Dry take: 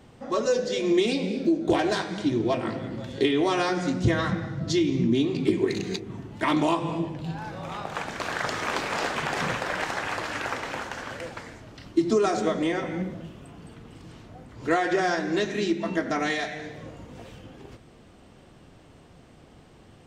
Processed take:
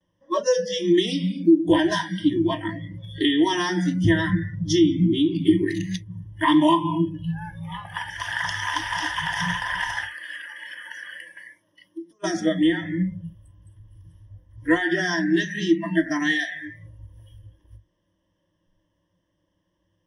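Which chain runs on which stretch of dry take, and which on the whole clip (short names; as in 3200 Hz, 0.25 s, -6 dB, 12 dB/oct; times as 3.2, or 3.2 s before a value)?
10.05–12.24 HPF 180 Hz + compressor 20:1, threshold -32 dBFS
whole clip: gate with hold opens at -47 dBFS; spectral noise reduction 24 dB; ripple EQ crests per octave 1.2, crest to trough 18 dB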